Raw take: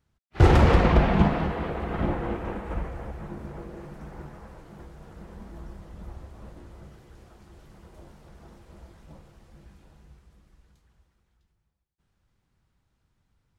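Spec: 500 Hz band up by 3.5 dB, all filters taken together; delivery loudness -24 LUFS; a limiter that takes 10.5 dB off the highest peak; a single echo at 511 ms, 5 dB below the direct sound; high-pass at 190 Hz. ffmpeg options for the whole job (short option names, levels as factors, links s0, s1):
-af "highpass=190,equalizer=f=500:t=o:g=4.5,alimiter=limit=0.15:level=0:latency=1,aecho=1:1:511:0.562,volume=1.68"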